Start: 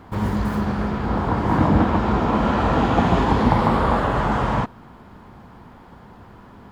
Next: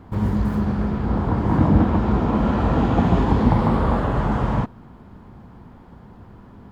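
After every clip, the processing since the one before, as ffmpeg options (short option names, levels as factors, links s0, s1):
-af "lowshelf=f=460:g=9.5,volume=0.473"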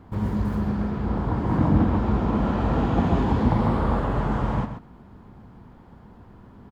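-af "aecho=1:1:131:0.335,volume=0.631"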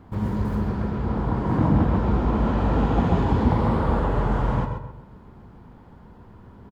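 -filter_complex "[0:a]asplit=2[s0][s1];[s1]adelay=133,lowpass=f=1500:p=1,volume=0.501,asplit=2[s2][s3];[s3]adelay=133,lowpass=f=1500:p=1,volume=0.38,asplit=2[s4][s5];[s5]adelay=133,lowpass=f=1500:p=1,volume=0.38,asplit=2[s6][s7];[s7]adelay=133,lowpass=f=1500:p=1,volume=0.38,asplit=2[s8][s9];[s9]adelay=133,lowpass=f=1500:p=1,volume=0.38[s10];[s0][s2][s4][s6][s8][s10]amix=inputs=6:normalize=0"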